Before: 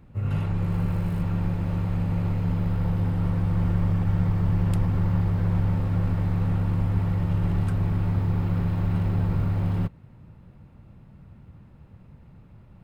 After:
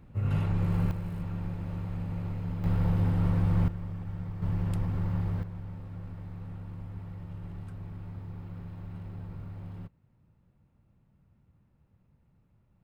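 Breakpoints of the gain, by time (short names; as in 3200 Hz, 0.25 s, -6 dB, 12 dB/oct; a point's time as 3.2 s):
-2 dB
from 0.91 s -9 dB
from 2.64 s -1.5 dB
from 3.68 s -14 dB
from 4.42 s -7 dB
from 5.43 s -17 dB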